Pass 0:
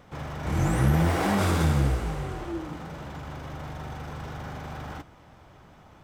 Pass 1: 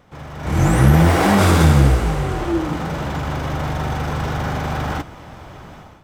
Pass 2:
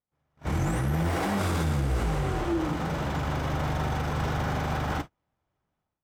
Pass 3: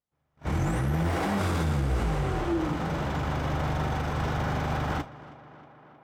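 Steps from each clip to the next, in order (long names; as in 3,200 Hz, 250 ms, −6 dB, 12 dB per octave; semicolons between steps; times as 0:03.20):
automatic gain control gain up to 14.5 dB
noise gate −27 dBFS, range −37 dB; brickwall limiter −13.5 dBFS, peak gain reduction 11.5 dB; level −5.5 dB
high-shelf EQ 6,600 Hz −5 dB; tape delay 316 ms, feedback 77%, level −16.5 dB, low-pass 3,800 Hz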